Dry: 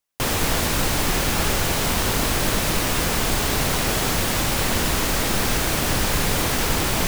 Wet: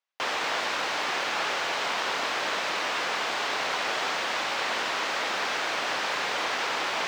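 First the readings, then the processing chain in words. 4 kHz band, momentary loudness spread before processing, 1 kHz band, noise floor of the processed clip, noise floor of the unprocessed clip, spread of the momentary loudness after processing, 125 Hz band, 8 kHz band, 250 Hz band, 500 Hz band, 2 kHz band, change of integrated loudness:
−4.5 dB, 0 LU, −2.0 dB, −30 dBFS, −23 dBFS, 0 LU, −29.5 dB, −14.5 dB, −17.0 dB, −7.0 dB, −2.0 dB, −6.5 dB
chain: high-pass filter 700 Hz 12 dB per octave
high-frequency loss of the air 170 metres

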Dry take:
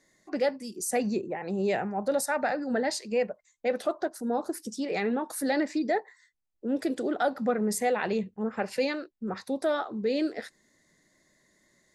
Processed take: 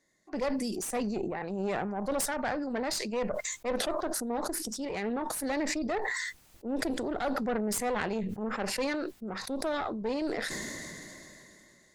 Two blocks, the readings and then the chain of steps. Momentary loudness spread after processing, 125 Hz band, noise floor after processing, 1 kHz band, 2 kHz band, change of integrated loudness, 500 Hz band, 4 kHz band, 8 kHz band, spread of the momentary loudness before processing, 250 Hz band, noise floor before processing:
7 LU, −1.0 dB, −61 dBFS, −2.5 dB, −1.0 dB, −3.0 dB, −4.5 dB, +2.0 dB, +2.0 dB, 6 LU, −2.5 dB, −70 dBFS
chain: harmonic generator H 4 −14 dB, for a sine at −16 dBFS
level that may fall only so fast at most 20 dB per second
level −6.5 dB

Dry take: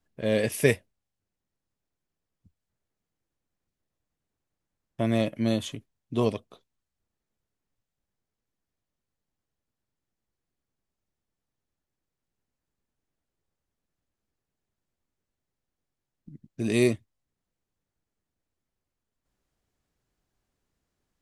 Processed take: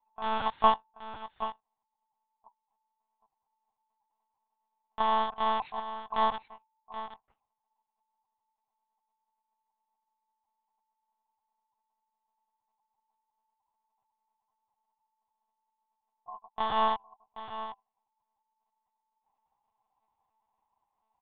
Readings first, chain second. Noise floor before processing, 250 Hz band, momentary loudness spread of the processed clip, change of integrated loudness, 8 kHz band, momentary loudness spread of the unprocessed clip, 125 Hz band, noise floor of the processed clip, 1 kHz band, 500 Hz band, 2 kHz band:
below −85 dBFS, −15.5 dB, 19 LU, −4.0 dB, below −35 dB, 13 LU, below −20 dB, below −85 dBFS, +16.5 dB, −9.0 dB, −6.0 dB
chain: loose part that buzzes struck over −31 dBFS, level −16 dBFS
low shelf with overshoot 210 Hz +10.5 dB, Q 3
on a send: single-tap delay 774 ms −12 dB
on the sum: ring modulation 890 Hz
one-pitch LPC vocoder at 8 kHz 220 Hz
level −7.5 dB

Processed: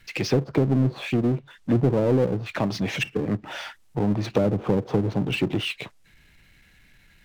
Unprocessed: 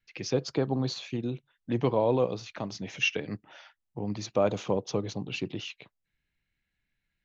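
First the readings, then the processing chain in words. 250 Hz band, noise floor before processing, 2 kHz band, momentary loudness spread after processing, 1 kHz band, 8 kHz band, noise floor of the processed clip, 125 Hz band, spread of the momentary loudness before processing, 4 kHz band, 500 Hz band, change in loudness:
+9.0 dB, −83 dBFS, +4.0 dB, 9 LU, +2.0 dB, can't be measured, −57 dBFS, +10.0 dB, 13 LU, +3.5 dB, +4.0 dB, +6.0 dB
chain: gain into a clipping stage and back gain 16.5 dB
treble cut that deepens with the level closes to 360 Hz, closed at −25.5 dBFS
power curve on the samples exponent 0.7
level +6.5 dB

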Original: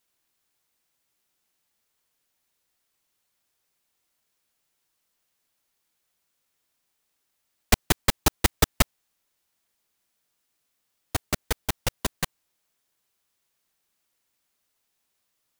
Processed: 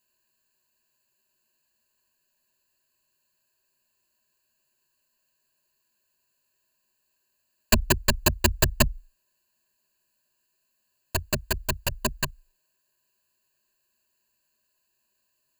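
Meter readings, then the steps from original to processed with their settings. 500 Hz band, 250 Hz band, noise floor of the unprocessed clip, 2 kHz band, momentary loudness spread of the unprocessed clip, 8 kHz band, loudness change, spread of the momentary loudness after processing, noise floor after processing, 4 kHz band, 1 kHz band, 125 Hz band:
+2.0 dB, +1.0 dB, −77 dBFS, +1.5 dB, 10 LU, +0.5 dB, +1.0 dB, 10 LU, −75 dBFS, 0.0 dB, −1.0 dB, +1.0 dB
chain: EQ curve with evenly spaced ripples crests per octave 1.4, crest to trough 17 dB
level −2.5 dB

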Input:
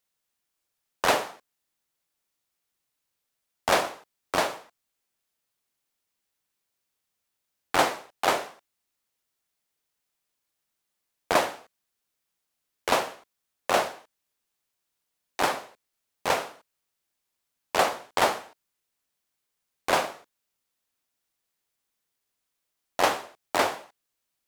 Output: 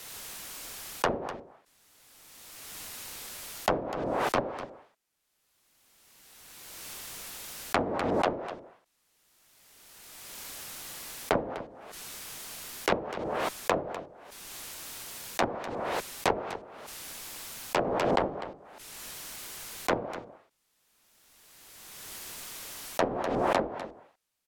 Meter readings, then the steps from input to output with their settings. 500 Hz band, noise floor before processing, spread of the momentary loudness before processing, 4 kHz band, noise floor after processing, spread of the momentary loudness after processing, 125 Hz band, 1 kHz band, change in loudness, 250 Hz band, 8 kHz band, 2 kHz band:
−0.5 dB, −82 dBFS, 13 LU, −6.0 dB, −74 dBFS, 17 LU, +5.5 dB, −4.0 dB, −6.0 dB, +3.5 dB, −1.5 dB, −5.5 dB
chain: treble cut that deepens with the level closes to 380 Hz, closed at −20 dBFS
frequency shifter −45 Hz
on a send: single-tap delay 250 ms −12.5 dB
on the sum: background raised ahead of every attack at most 22 dB per second

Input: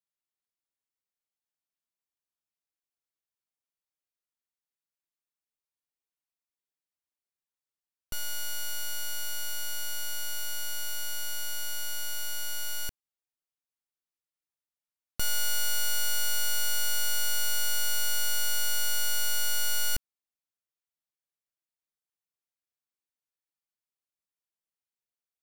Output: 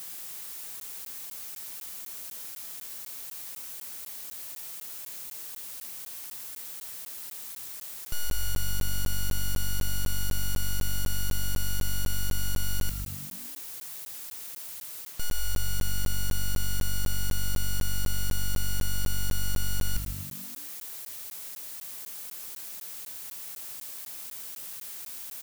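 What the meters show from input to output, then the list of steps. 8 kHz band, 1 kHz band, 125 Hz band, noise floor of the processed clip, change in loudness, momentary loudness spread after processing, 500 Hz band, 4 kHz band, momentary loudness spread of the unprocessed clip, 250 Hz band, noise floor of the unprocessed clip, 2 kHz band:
−2.5 dB, −2.0 dB, +16.5 dB, −42 dBFS, −4.5 dB, 6 LU, +2.0 dB, −4.0 dB, 6 LU, +17.5 dB, below −85 dBFS, −4.0 dB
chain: spike at every zero crossing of −38 dBFS
low-shelf EQ 100 Hz +8.5 dB
reversed playback
downward compressor 10 to 1, threshold −26 dBFS, peak gain reduction 9.5 dB
reversed playback
leveller curve on the samples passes 1
on a send: echo with shifted repeats 107 ms, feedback 56%, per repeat −48 Hz, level −13 dB
on the sum: bit-depth reduction 8 bits, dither triangular
regular buffer underruns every 0.25 s, samples 512, zero, from 0:00.80

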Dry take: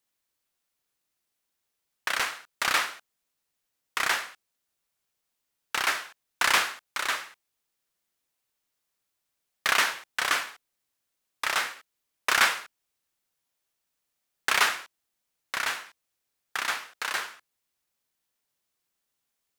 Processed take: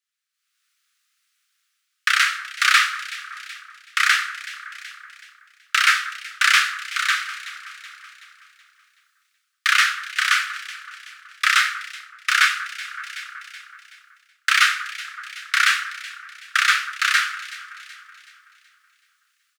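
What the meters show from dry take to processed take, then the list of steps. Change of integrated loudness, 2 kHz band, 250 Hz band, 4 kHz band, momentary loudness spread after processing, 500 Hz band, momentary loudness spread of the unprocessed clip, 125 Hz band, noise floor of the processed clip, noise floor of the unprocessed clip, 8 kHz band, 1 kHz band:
+7.5 dB, +9.5 dB, below −40 dB, +8.5 dB, 20 LU, below −40 dB, 13 LU, can't be measured, −74 dBFS, −82 dBFS, +5.5 dB, +6.0 dB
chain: Butterworth high-pass 1,200 Hz 96 dB per octave
parametric band 13,000 Hz −3 dB 0.27 octaves
double-tracking delay 28 ms −12 dB
on a send: delay that swaps between a low-pass and a high-pass 188 ms, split 1,700 Hz, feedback 65%, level −12.5 dB
on the sum: automatic gain control gain up to 15.5 dB
high-shelf EQ 8,900 Hz −10.5 dB

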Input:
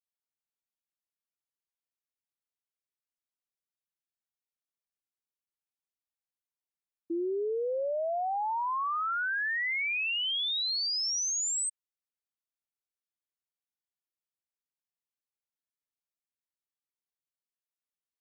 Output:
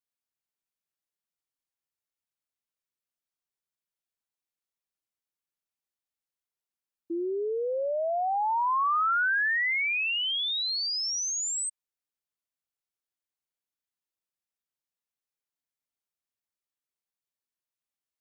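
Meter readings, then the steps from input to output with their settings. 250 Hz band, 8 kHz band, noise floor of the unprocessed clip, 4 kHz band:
+0.5 dB, 0.0 dB, below −85 dBFS, +1.5 dB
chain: dynamic equaliser 1,300 Hz, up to +6 dB, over −45 dBFS, Q 0.74

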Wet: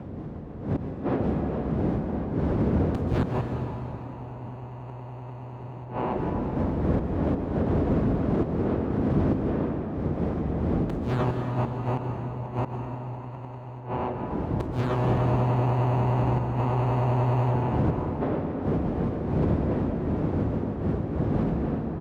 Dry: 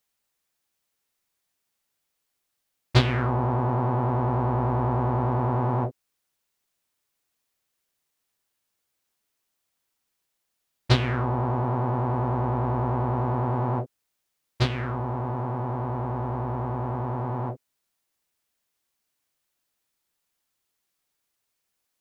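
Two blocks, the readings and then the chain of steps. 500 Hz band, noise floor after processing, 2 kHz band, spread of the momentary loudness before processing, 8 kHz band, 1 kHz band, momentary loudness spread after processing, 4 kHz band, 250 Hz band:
+3.5 dB, −39 dBFS, −3.5 dB, 6 LU, can't be measured, −2.0 dB, 14 LU, below −10 dB, +6.5 dB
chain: running median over 25 samples
wind on the microphone 250 Hz −29 dBFS
high-pass filter 53 Hz 24 dB per octave
far-end echo of a speakerphone 290 ms, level −8 dB
in parallel at −1 dB: downward compressor 12 to 1, threshold −39 dBFS, peak gain reduction 29.5 dB
on the sum: high-shelf EQ 2,700 Hz −5 dB
mains-hum notches 60/120/180/240 Hz
automatic gain control gain up to 7 dB
gate with flip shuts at −9 dBFS, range −24 dB
brickwall limiter −17 dBFS, peak gain reduction 10 dB
dense smooth reverb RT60 3.6 s, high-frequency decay 0.7×, pre-delay 115 ms, DRR 3 dB

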